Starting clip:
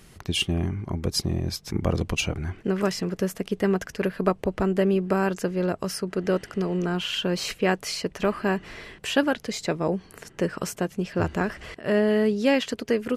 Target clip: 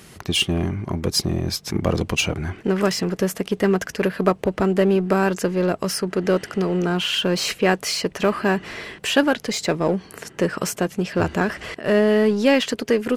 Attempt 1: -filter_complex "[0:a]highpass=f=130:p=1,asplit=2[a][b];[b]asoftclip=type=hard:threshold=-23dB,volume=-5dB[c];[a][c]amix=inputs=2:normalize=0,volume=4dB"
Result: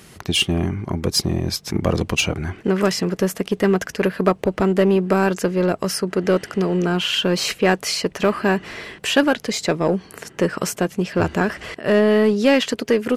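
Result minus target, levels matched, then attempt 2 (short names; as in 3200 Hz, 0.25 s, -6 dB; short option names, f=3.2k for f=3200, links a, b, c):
hard clip: distortion -5 dB
-filter_complex "[0:a]highpass=f=130:p=1,asplit=2[a][b];[b]asoftclip=type=hard:threshold=-32dB,volume=-5dB[c];[a][c]amix=inputs=2:normalize=0,volume=4dB"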